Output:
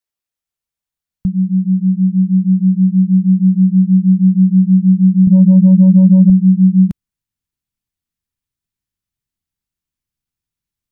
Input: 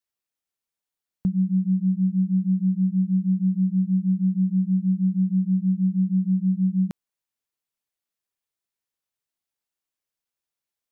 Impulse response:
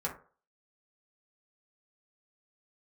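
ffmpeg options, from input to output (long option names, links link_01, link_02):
-filter_complex "[0:a]asettb=1/sr,asplit=3[link_01][link_02][link_03];[link_01]atrim=end=5.274[link_04];[link_02]atrim=start=5.27:end=6.3,asetpts=PTS-STARTPTS,afade=type=in:duration=0.004:curve=qsin,afade=type=out:start_time=1.026:duration=0.004:curve=qsin,aeval=exprs='0.168*sin(PI/2*1.78*val(0)/0.168)':channel_layout=same[link_05];[link_03]atrim=start=6.296[link_06];[link_04][link_05]acrossfade=duration=0.004:curve1=hsin:curve2=qsin[link_07];[link_07][link_06]acrossfade=duration=0.004:curve1=qsin:curve2=hsin,asubboost=boost=10:cutoff=170,volume=1dB"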